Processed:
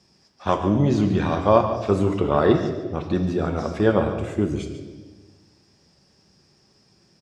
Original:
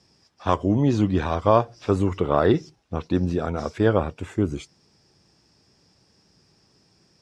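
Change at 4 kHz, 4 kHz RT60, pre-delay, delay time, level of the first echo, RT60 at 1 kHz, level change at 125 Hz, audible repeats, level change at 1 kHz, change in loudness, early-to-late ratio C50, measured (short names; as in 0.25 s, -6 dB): +1.5 dB, 1.2 s, 5 ms, 0.143 s, -12.5 dB, 1.2 s, +0.5 dB, 1, +1.0 dB, +1.5 dB, 7.0 dB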